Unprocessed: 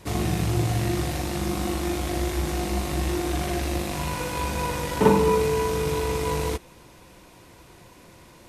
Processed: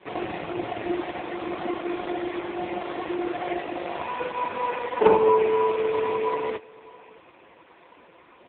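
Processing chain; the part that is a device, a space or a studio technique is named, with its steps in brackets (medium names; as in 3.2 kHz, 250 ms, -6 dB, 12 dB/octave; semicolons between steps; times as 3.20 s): satellite phone (band-pass 380–3200 Hz; delay 615 ms -22.5 dB; trim +5.5 dB; AMR-NB 4.75 kbps 8 kHz)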